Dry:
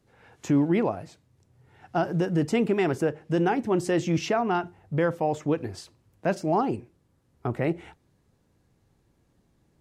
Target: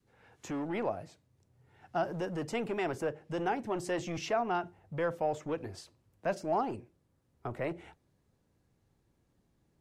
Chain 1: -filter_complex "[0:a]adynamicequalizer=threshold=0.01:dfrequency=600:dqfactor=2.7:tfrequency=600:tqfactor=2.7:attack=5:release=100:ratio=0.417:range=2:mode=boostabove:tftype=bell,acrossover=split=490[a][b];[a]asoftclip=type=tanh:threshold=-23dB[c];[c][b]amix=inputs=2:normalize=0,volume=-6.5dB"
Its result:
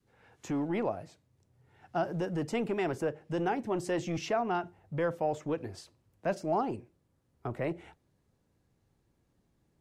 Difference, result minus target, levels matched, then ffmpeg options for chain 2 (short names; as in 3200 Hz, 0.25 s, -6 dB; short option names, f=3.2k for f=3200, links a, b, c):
soft clip: distortion -6 dB
-filter_complex "[0:a]adynamicequalizer=threshold=0.01:dfrequency=600:dqfactor=2.7:tfrequency=600:tqfactor=2.7:attack=5:release=100:ratio=0.417:range=2:mode=boostabove:tftype=bell,acrossover=split=490[a][b];[a]asoftclip=type=tanh:threshold=-30dB[c];[c][b]amix=inputs=2:normalize=0,volume=-6.5dB"